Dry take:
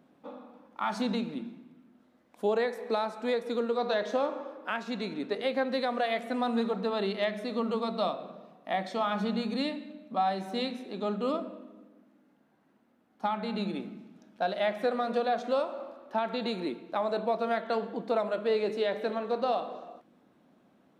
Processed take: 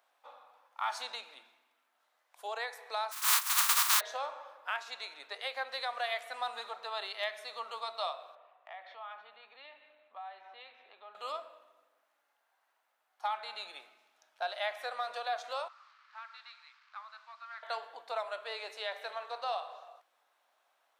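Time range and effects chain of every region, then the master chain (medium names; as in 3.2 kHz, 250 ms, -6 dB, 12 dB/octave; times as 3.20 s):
3.11–3.99 s: spectral contrast reduction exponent 0.1 + resonant high-pass 1.1 kHz, resonance Q 3.4
8.35–11.15 s: low-pass 3 kHz 24 dB/octave + compression 2.5:1, threshold -43 dBFS
15.68–17.63 s: one-bit delta coder 64 kbps, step -42.5 dBFS + Chebyshev band-pass 1.2–4.4 kHz, order 3 + peaking EQ 3.5 kHz -13.5 dB 2 oct
whole clip: high-pass 740 Hz 24 dB/octave; treble shelf 4.2 kHz +6 dB; trim -2.5 dB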